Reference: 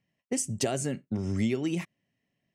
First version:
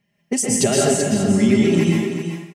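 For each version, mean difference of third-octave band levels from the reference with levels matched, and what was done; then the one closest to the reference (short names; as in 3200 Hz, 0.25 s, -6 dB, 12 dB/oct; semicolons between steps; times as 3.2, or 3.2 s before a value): 8.5 dB: comb 4.9 ms, depth 60%; echo 0.383 s -8 dB; plate-style reverb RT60 0.87 s, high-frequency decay 0.9×, pre-delay 0.105 s, DRR -2.5 dB; gain +7.5 dB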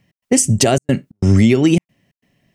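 4.5 dB: low shelf 77 Hz +8.5 dB; step gate "x.xxxxx.x" 135 bpm -60 dB; maximiser +19 dB; gain -2 dB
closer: second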